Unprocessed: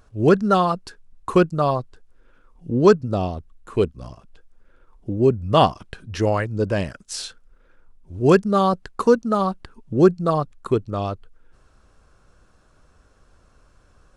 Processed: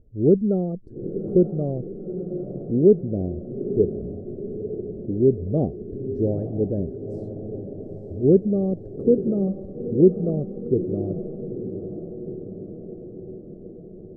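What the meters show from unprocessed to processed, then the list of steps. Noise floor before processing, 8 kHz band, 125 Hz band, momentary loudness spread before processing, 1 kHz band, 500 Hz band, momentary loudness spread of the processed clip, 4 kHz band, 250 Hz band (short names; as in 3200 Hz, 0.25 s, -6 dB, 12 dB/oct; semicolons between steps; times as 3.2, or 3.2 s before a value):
-57 dBFS, under -35 dB, -1.0 dB, 15 LU, -23.5 dB, -1.5 dB, 18 LU, under -40 dB, +0.5 dB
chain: inverse Chebyshev low-pass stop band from 960 Hz, stop band 40 dB; dynamic EQ 110 Hz, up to -4 dB, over -40 dBFS, Q 2.3; diffused feedback echo 0.91 s, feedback 63%, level -10 dB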